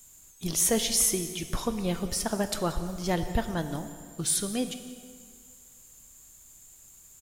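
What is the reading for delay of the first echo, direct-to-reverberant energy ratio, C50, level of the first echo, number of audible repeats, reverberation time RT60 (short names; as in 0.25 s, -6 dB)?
0.18 s, 8.5 dB, 10.0 dB, -19.0 dB, 1, 2.1 s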